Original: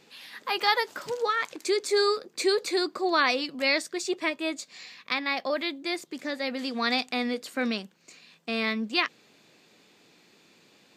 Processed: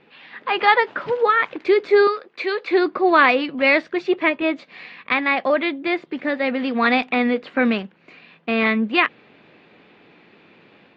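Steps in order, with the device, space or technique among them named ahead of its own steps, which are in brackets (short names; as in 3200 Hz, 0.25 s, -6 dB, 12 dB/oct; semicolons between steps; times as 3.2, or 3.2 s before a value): 2.07–2.71 HPF 1200 Hz 6 dB/oct; action camera in a waterproof case (LPF 2800 Hz 24 dB/oct; AGC gain up to 5 dB; gain +5 dB; AAC 48 kbps 48000 Hz)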